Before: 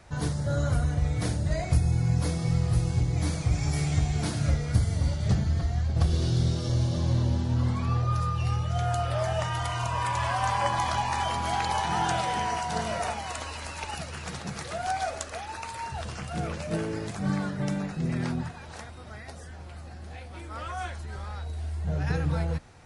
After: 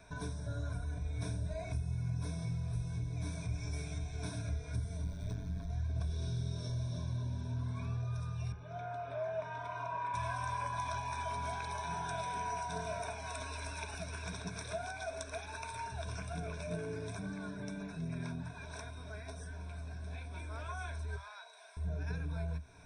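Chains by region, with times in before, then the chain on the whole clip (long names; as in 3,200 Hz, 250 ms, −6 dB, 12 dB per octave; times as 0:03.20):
0:05.04–0:05.70: running median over 3 samples + amplitude modulation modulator 100 Hz, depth 60%
0:08.52–0:10.14: high-pass filter 270 Hz + head-to-tape spacing loss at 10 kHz 29 dB + saturating transformer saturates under 530 Hz
0:21.16–0:21.77: high-pass filter 720 Hz 24 dB per octave + high-shelf EQ 9,300 Hz −10 dB
whole clip: parametric band 3,100 Hz −2.5 dB 0.32 octaves; downward compressor 3 to 1, threshold −35 dBFS; EQ curve with evenly spaced ripples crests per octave 1.6, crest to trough 16 dB; level −7 dB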